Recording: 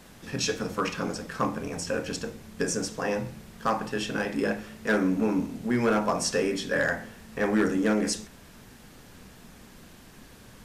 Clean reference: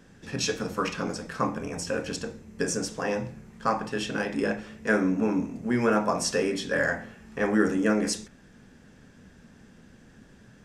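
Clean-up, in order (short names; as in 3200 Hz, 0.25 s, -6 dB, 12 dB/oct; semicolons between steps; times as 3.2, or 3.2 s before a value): clip repair -17 dBFS; noise print and reduce 6 dB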